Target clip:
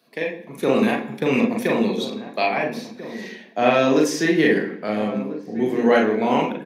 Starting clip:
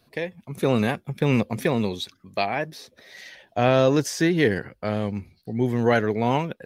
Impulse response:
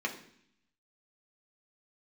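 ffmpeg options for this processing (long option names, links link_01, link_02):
-filter_complex "[0:a]highpass=frequency=180:width=0.5412,highpass=frequency=180:width=1.3066,asplit=2[link_01][link_02];[link_02]adelay=1341,volume=-13dB,highshelf=frequency=4000:gain=-30.2[link_03];[link_01][link_03]amix=inputs=2:normalize=0,asplit=2[link_04][link_05];[1:a]atrim=start_sample=2205,adelay=37[link_06];[link_05][link_06]afir=irnorm=-1:irlink=0,volume=-4dB[link_07];[link_04][link_07]amix=inputs=2:normalize=0"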